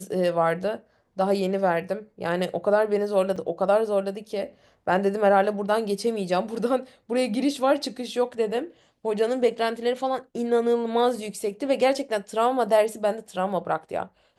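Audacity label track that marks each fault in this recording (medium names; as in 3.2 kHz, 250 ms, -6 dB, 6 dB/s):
3.360000	3.370000	dropout 5.4 ms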